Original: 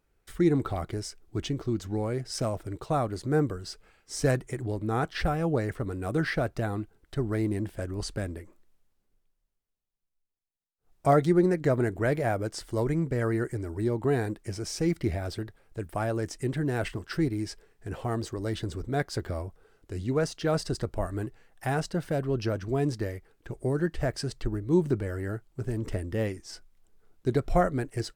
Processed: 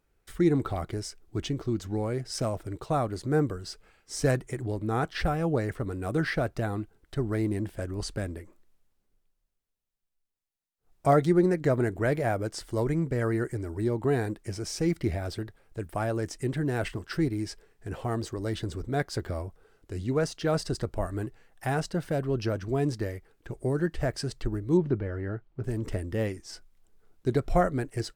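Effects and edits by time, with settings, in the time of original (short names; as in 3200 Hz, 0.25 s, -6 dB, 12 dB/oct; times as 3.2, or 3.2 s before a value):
24.77–25.64 air absorption 250 m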